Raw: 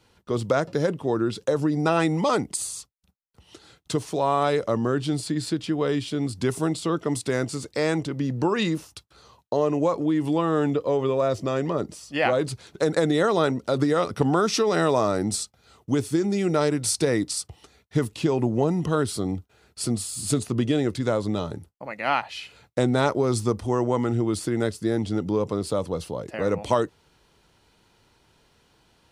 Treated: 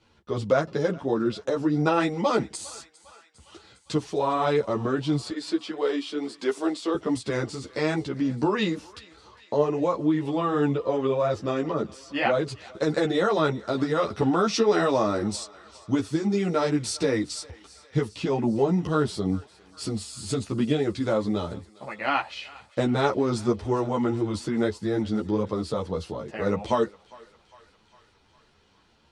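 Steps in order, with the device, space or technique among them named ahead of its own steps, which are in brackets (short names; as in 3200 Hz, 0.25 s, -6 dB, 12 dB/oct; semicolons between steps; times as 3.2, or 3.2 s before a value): 5.3–6.95 HPF 290 Hz 24 dB/oct; string-machine ensemble chorus (ensemble effect; LPF 6000 Hz 12 dB/oct); thinning echo 0.404 s, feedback 72%, high-pass 810 Hz, level -20 dB; gain +2 dB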